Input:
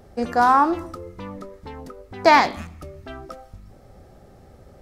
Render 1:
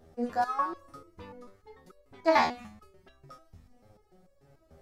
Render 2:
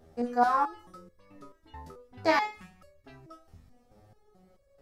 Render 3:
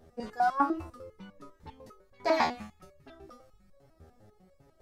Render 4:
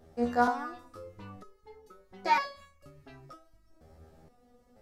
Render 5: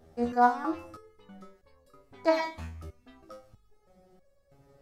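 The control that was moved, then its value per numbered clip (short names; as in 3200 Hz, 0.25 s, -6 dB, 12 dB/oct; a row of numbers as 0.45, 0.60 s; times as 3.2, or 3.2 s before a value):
stepped resonator, rate: 6.8, 4.6, 10, 2.1, 3.1 Hz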